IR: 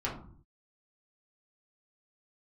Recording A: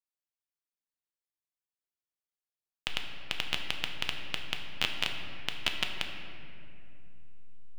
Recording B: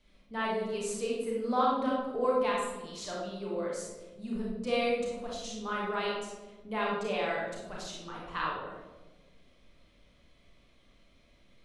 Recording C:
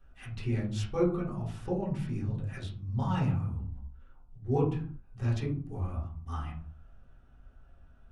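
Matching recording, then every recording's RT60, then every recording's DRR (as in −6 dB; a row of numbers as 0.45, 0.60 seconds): C; 2.7, 1.4, 0.55 seconds; 3.0, −5.0, −6.5 decibels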